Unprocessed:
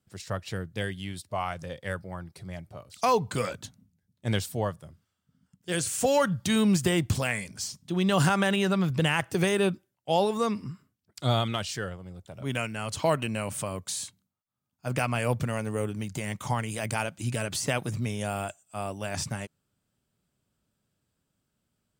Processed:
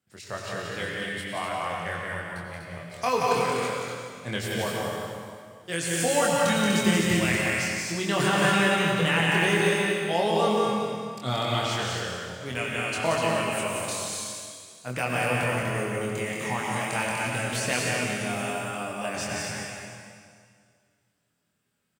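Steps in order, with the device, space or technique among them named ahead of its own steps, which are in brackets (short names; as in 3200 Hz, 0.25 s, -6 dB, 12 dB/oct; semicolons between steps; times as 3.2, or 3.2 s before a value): stadium PA (HPF 190 Hz 6 dB/oct; bell 2000 Hz +5 dB 0.88 oct; loudspeakers at several distances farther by 61 m -4 dB, 84 m -4 dB; reverb RT60 2.0 s, pre-delay 84 ms, DRR 1 dB); doubler 24 ms -3.5 dB; gain -3.5 dB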